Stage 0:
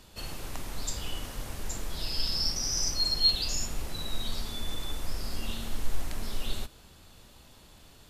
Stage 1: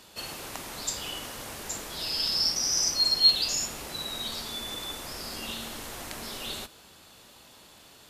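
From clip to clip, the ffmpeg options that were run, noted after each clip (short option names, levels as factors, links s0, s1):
-af "highpass=f=350:p=1,volume=1.68"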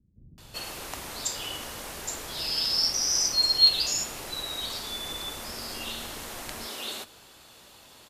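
-filter_complex "[0:a]acrossover=split=200[s0][s1];[s1]adelay=380[s2];[s0][s2]amix=inputs=2:normalize=0,volume=1.12"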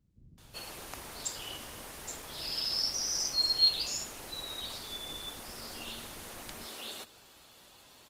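-af "volume=0.562" -ar 48000 -c:a libopus -b:a 20k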